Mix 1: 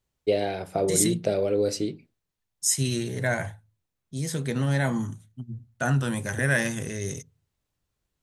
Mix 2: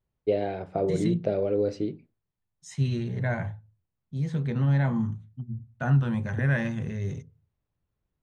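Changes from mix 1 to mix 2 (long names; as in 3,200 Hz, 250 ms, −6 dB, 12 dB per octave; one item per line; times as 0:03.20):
second voice: send +6.5 dB
master: add head-to-tape spacing loss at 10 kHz 32 dB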